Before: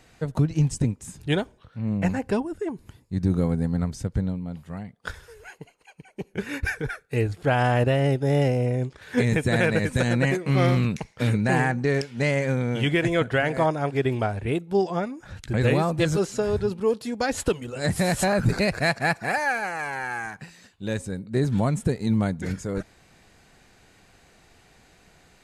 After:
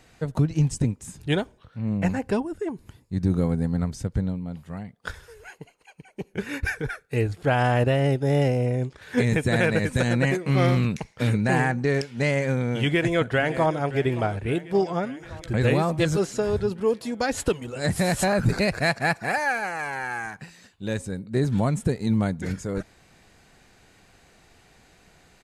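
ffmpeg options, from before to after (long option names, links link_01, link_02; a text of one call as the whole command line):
ffmpeg -i in.wav -filter_complex "[0:a]asplit=2[link_01][link_02];[link_02]afade=type=in:start_time=12.79:duration=0.01,afade=type=out:start_time=13.75:duration=0.01,aecho=0:1:570|1140|1710|2280|2850|3420|3990|4560:0.149624|0.104736|0.0733155|0.0513209|0.0359246|0.0251472|0.0176031|0.0123221[link_03];[link_01][link_03]amix=inputs=2:normalize=0" out.wav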